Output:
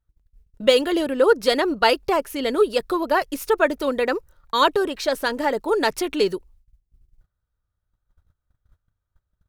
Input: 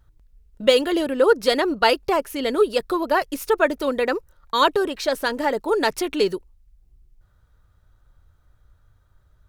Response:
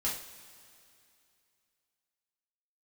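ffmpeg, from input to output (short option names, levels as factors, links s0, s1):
-af "agate=range=0.1:threshold=0.00282:ratio=16:detection=peak"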